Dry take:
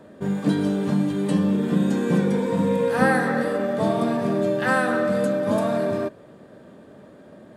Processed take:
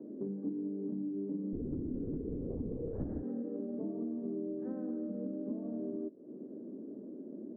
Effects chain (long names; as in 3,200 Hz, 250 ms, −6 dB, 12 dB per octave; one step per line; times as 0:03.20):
flat-topped band-pass 300 Hz, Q 1.8
downward compressor 5 to 1, threshold −43 dBFS, peak gain reduction 21 dB
0:01.53–0:03.23: linear-prediction vocoder at 8 kHz whisper
level +5.5 dB